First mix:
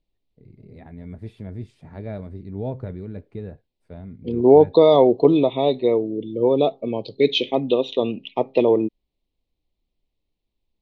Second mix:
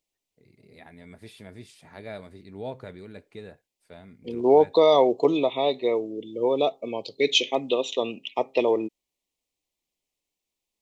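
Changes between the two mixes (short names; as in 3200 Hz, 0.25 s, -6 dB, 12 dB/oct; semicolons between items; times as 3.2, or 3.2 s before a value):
second voice: remove synth low-pass 4100 Hz, resonance Q 2.9; master: add tilt +4.5 dB/oct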